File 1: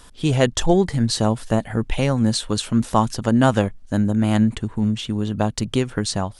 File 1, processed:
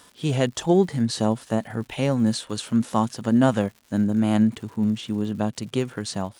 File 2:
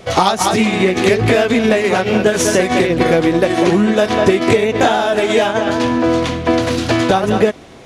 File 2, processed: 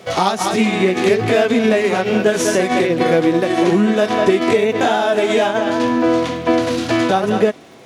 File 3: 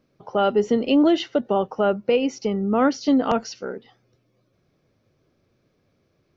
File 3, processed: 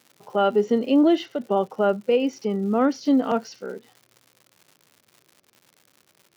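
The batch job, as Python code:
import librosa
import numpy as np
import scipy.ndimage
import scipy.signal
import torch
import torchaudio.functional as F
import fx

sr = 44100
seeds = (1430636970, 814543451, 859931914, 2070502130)

y = fx.hpss(x, sr, part='harmonic', gain_db=7)
y = fx.dmg_crackle(y, sr, seeds[0], per_s=210.0, level_db=-33.0)
y = scipy.signal.sosfilt(scipy.signal.butter(2, 150.0, 'highpass', fs=sr, output='sos'), y)
y = y * librosa.db_to_amplitude(-7.0)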